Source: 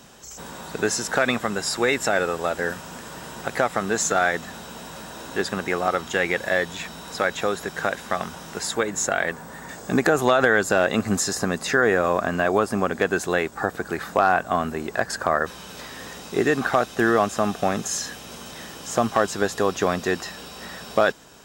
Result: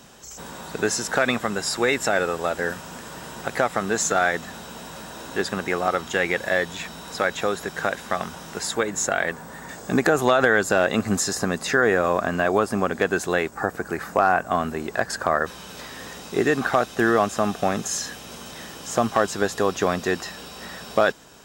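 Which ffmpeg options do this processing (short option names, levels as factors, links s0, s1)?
-filter_complex "[0:a]asettb=1/sr,asplit=3[s0][s1][s2];[s0]atrim=end=13.494[s3];[s1]atrim=start=13.49:end=14.51,asetpts=PTS-STARTPTS,afade=t=in:d=0.004:c=qsin,afade=t=out:st=1.016:d=0.004:c=qsin,equalizer=f=3600:w=2.4:g=-7.5[s4];[s2]atrim=start=14.506[s5];[s3][s4]acrossfade=d=0.004:c1=hsin:c2=qsin[s6];[s6][s5]acrossfade=d=0.004:c1=qsin:c2=hsin"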